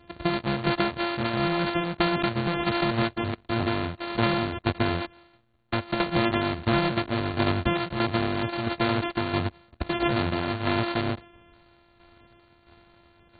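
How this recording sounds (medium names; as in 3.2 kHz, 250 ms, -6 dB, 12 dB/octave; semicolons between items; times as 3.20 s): a buzz of ramps at a fixed pitch in blocks of 128 samples; tremolo saw down 1.5 Hz, depth 55%; AAC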